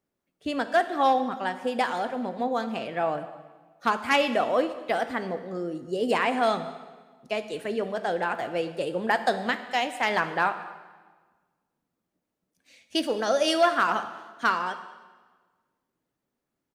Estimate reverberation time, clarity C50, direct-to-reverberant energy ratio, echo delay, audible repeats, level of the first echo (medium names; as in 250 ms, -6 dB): 1.4 s, 11.5 dB, 9.5 dB, 210 ms, 1, -22.5 dB